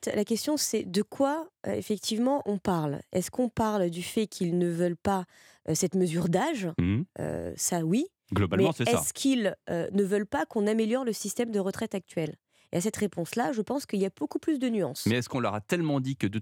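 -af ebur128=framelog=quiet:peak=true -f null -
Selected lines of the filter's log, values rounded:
Integrated loudness:
  I:         -28.9 LUFS
  Threshold: -39.0 LUFS
Loudness range:
  LRA:         3.0 LU
  Threshold: -49.0 LUFS
  LRA low:   -30.6 LUFS
  LRA high:  -27.5 LUFS
True peak:
  Peak:      -10.4 dBFS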